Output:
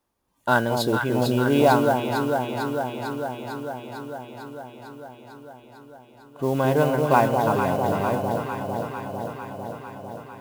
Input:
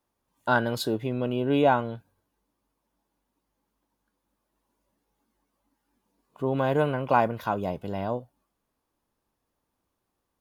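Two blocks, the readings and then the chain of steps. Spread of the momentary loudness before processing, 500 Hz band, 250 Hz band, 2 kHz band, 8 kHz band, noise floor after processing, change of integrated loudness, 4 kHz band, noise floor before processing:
10 LU, +6.0 dB, +6.0 dB, +5.5 dB, no reading, -51 dBFS, +3.0 dB, +5.5 dB, -81 dBFS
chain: echo whose repeats swap between lows and highs 225 ms, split 890 Hz, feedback 85%, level -3.5 dB; modulation noise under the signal 24 dB; trim +3 dB

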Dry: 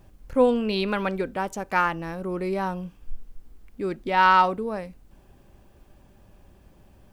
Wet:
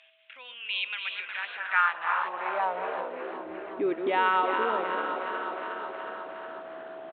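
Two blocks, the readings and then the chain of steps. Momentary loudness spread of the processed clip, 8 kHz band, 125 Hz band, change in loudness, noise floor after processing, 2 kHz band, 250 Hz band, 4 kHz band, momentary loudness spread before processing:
15 LU, no reading, under -20 dB, -5.0 dB, -49 dBFS, 0.0 dB, -10.0 dB, 0.0 dB, 15 LU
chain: backward echo that repeats 152 ms, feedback 51%, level -10 dB; feedback delay 363 ms, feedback 56%, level -14 dB; whistle 650 Hz -48 dBFS; compression 2:1, threshold -42 dBFS, peak gain reduction 15.5 dB; resampled via 8 kHz; distance through air 83 m; frequency-shifting echo 362 ms, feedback 60%, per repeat +70 Hz, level -10 dB; high-pass sweep 2.6 kHz -> 340 Hz, 1.07–3.47 s; tilt EQ +2 dB/octave; trim +7 dB

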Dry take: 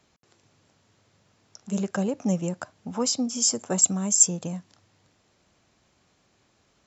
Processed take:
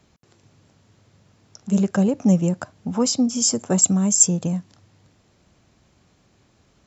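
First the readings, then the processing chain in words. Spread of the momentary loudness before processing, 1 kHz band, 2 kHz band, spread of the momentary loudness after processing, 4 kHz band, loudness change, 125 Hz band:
16 LU, +3.5 dB, +3.0 dB, 11 LU, +2.5 dB, +4.5 dB, +9.0 dB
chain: bass shelf 300 Hz +9 dB; trim +2.5 dB

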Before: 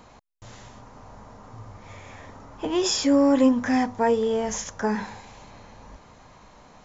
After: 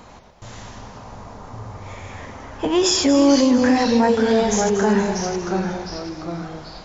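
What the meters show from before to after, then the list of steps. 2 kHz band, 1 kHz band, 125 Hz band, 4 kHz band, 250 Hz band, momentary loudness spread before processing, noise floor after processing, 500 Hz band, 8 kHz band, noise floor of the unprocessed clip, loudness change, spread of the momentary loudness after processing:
+7.0 dB, +6.0 dB, +11.5 dB, +7.5 dB, +5.5 dB, 12 LU, -44 dBFS, +6.0 dB, no reading, -52 dBFS, +4.5 dB, 21 LU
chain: ever faster or slower copies 88 ms, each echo -2 st, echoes 3, each echo -6 dB; peak limiter -15 dBFS, peak gain reduction 6.5 dB; two-band feedback delay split 470 Hz, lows 124 ms, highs 234 ms, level -12 dB; trim +6.5 dB

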